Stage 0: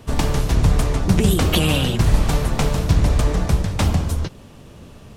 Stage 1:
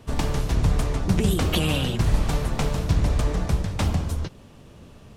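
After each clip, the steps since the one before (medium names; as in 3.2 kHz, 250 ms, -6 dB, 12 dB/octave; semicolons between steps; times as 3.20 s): treble shelf 9.3 kHz -3.5 dB; trim -5 dB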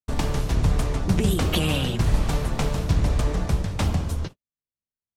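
gate -33 dBFS, range -58 dB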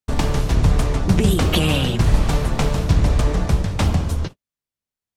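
treble shelf 9.9 kHz -3.5 dB; trim +5 dB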